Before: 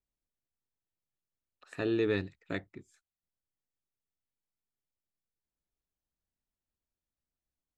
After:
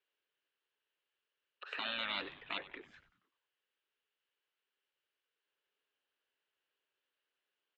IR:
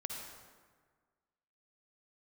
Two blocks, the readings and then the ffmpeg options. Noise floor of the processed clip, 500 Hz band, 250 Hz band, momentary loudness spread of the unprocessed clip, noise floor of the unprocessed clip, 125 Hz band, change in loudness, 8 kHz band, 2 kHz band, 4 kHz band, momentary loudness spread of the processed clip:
below −85 dBFS, −17.0 dB, −19.5 dB, 11 LU, below −85 dBFS, −24.5 dB, −6.0 dB, can't be measured, 0.0 dB, +8.0 dB, 16 LU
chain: -filter_complex "[0:a]highpass=frequency=410:width=0.5412,highpass=frequency=410:width=1.3066,equalizer=frequency=420:width_type=q:width=4:gain=5,equalizer=frequency=710:width_type=q:width=4:gain=-7,equalizer=frequency=1600:width_type=q:width=4:gain=7,equalizer=frequency=2900:width_type=q:width=4:gain=10,lowpass=frequency=4000:width=0.5412,lowpass=frequency=4000:width=1.3066,afftfilt=real='re*lt(hypot(re,im),0.0251)':imag='im*lt(hypot(re,im),0.0251)':win_size=1024:overlap=0.75,asplit=6[link_01][link_02][link_03][link_04][link_05][link_06];[link_02]adelay=95,afreqshift=-140,volume=-16dB[link_07];[link_03]adelay=190,afreqshift=-280,volume=-21dB[link_08];[link_04]adelay=285,afreqshift=-420,volume=-26.1dB[link_09];[link_05]adelay=380,afreqshift=-560,volume=-31.1dB[link_10];[link_06]adelay=475,afreqshift=-700,volume=-36.1dB[link_11];[link_01][link_07][link_08][link_09][link_10][link_11]amix=inputs=6:normalize=0,volume=7.5dB"

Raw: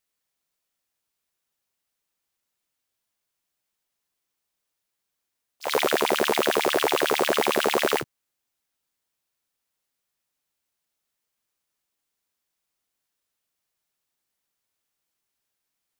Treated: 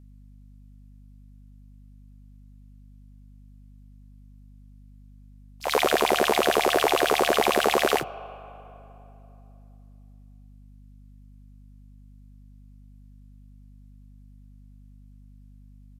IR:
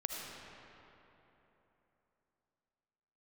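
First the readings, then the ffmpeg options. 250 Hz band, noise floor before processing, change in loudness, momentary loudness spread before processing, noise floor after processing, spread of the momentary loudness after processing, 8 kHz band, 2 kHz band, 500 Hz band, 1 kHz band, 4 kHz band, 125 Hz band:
0.0 dB, −82 dBFS, +0.5 dB, 6 LU, −49 dBFS, 8 LU, 0.0 dB, +0.5 dB, +1.0 dB, +2.5 dB, 0.0 dB, +5.0 dB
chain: -filter_complex "[0:a]asplit=2[link_01][link_02];[link_02]asplit=3[link_03][link_04][link_05];[link_03]bandpass=frequency=730:width_type=q:width=8,volume=0dB[link_06];[link_04]bandpass=frequency=1090:width_type=q:width=8,volume=-6dB[link_07];[link_05]bandpass=frequency=2440:width_type=q:width=8,volume=-9dB[link_08];[link_06][link_07][link_08]amix=inputs=3:normalize=0[link_09];[1:a]atrim=start_sample=2205,asetrate=48510,aresample=44100[link_10];[link_09][link_10]afir=irnorm=-1:irlink=0,volume=-2dB[link_11];[link_01][link_11]amix=inputs=2:normalize=0,aresample=32000,aresample=44100,aeval=exprs='val(0)+0.00398*(sin(2*PI*50*n/s)+sin(2*PI*2*50*n/s)/2+sin(2*PI*3*50*n/s)/3+sin(2*PI*4*50*n/s)/4+sin(2*PI*5*50*n/s)/5)':channel_layout=same"

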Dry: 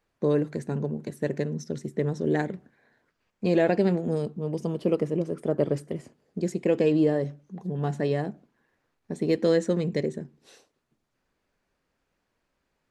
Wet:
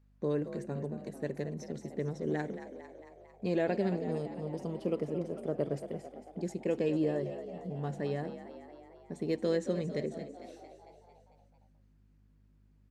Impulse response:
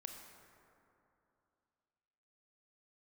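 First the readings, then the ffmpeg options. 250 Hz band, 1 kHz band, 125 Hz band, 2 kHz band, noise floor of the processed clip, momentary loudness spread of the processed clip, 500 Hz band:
−8.0 dB, −7.0 dB, −8.5 dB, −8.0 dB, −65 dBFS, 18 LU, −8.0 dB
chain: -filter_complex "[0:a]aeval=exprs='val(0)+0.00178*(sin(2*PI*50*n/s)+sin(2*PI*2*50*n/s)/2+sin(2*PI*3*50*n/s)/3+sin(2*PI*4*50*n/s)/4+sin(2*PI*5*50*n/s)/5)':channel_layout=same,asplit=2[link_01][link_02];[link_02]asplit=7[link_03][link_04][link_05][link_06][link_07][link_08][link_09];[link_03]adelay=225,afreqshift=55,volume=-11.5dB[link_10];[link_04]adelay=450,afreqshift=110,volume=-15.9dB[link_11];[link_05]adelay=675,afreqshift=165,volume=-20.4dB[link_12];[link_06]adelay=900,afreqshift=220,volume=-24.8dB[link_13];[link_07]adelay=1125,afreqshift=275,volume=-29.2dB[link_14];[link_08]adelay=1350,afreqshift=330,volume=-33.7dB[link_15];[link_09]adelay=1575,afreqshift=385,volume=-38.1dB[link_16];[link_10][link_11][link_12][link_13][link_14][link_15][link_16]amix=inputs=7:normalize=0[link_17];[link_01][link_17]amix=inputs=2:normalize=0,volume=-8.5dB"

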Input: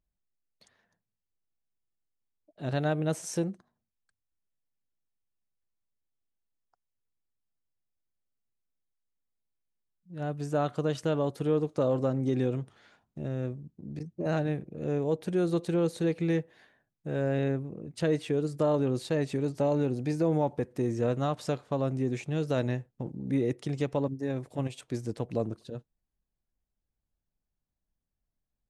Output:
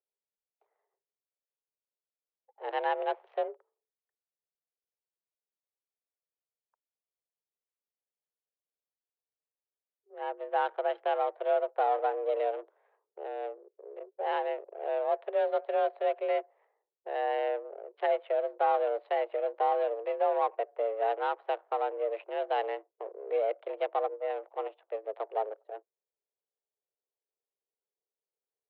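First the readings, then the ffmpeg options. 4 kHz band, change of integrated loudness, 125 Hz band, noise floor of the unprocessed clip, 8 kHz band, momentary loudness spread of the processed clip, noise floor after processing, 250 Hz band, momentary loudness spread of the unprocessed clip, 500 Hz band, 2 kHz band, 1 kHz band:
−3.5 dB, −1.5 dB, below −40 dB, below −85 dBFS, below −30 dB, 12 LU, below −85 dBFS, −20.0 dB, 11 LU, +0.5 dB, +1.0 dB, +9.0 dB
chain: -af "adynamicsmooth=sensitivity=7:basefreq=570,highpass=frequency=230:width_type=q:width=0.5412,highpass=frequency=230:width_type=q:width=1.307,lowpass=frequency=3300:width_type=q:width=0.5176,lowpass=frequency=3300:width_type=q:width=0.7071,lowpass=frequency=3300:width_type=q:width=1.932,afreqshift=210"

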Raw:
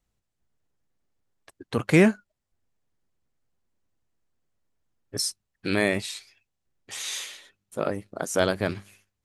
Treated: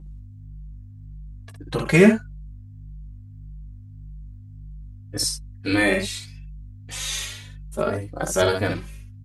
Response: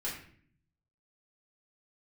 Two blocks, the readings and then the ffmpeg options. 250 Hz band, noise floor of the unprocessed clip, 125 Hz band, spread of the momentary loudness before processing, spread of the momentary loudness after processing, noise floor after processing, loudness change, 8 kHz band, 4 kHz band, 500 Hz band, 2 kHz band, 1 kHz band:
+4.0 dB, −82 dBFS, +4.5 dB, 19 LU, 24 LU, −42 dBFS, +3.5 dB, +4.0 dB, +4.0 dB, +4.0 dB, +4.5 dB, +4.0 dB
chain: -filter_complex "[0:a]aeval=exprs='val(0)+0.00794*(sin(2*PI*50*n/s)+sin(2*PI*2*50*n/s)/2+sin(2*PI*3*50*n/s)/3+sin(2*PI*4*50*n/s)/4+sin(2*PI*5*50*n/s)/5)':channel_layout=same,aecho=1:1:13|62:0.398|0.531,asplit=2[link_01][link_02];[link_02]adelay=3.4,afreqshift=1.7[link_03];[link_01][link_03]amix=inputs=2:normalize=1,volume=5.5dB"

